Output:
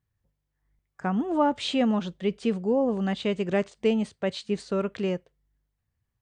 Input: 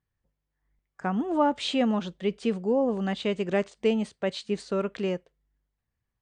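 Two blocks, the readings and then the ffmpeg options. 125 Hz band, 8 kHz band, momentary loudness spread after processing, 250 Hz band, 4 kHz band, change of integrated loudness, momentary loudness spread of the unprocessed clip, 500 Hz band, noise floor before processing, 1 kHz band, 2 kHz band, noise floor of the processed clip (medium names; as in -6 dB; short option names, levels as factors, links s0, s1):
+2.0 dB, 0.0 dB, 6 LU, +1.5 dB, 0.0 dB, +1.0 dB, 7 LU, +0.5 dB, -84 dBFS, 0.0 dB, 0.0 dB, -81 dBFS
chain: -af "equalizer=f=99:t=o:w=1.2:g=7.5"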